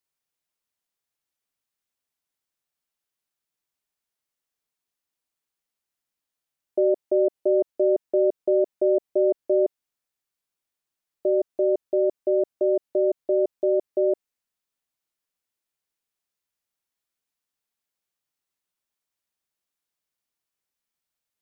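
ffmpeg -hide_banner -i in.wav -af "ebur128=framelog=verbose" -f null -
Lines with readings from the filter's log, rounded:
Integrated loudness:
  I:         -23.7 LUFS
  Threshold: -33.7 LUFS
Loudness range:
  LRA:         7.3 LU
  Threshold: -45.7 LUFS
  LRA low:   -30.5 LUFS
  LRA high:  -23.2 LUFS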